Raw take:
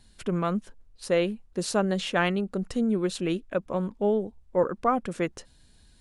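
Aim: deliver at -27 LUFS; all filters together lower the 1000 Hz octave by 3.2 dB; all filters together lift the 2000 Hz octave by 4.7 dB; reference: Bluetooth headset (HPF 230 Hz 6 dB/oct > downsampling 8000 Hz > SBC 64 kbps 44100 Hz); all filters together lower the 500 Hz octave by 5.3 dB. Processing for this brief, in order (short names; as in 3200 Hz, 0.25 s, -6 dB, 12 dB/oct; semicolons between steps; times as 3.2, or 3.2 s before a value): HPF 230 Hz 6 dB/oct; bell 500 Hz -4.5 dB; bell 1000 Hz -5 dB; bell 2000 Hz +8 dB; downsampling 8000 Hz; gain +3.5 dB; SBC 64 kbps 44100 Hz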